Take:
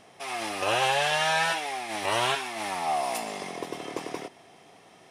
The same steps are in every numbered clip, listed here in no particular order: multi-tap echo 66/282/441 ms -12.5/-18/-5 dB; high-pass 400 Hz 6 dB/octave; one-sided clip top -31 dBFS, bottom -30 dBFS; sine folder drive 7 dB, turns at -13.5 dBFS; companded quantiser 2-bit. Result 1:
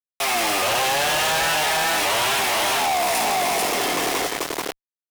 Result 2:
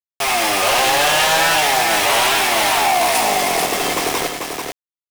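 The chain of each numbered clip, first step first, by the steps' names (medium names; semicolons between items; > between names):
multi-tap echo > companded quantiser > high-pass > one-sided clip > sine folder; one-sided clip > high-pass > companded quantiser > sine folder > multi-tap echo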